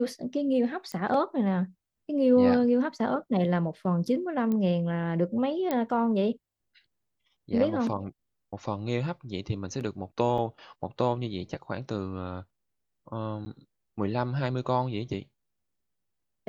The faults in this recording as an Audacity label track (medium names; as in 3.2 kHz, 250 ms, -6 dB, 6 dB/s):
0.920000	0.920000	pop -23 dBFS
4.520000	4.520000	pop -20 dBFS
5.710000	5.710000	pop -15 dBFS
10.380000	10.380000	dropout 2.7 ms
13.450000	13.460000	dropout 10 ms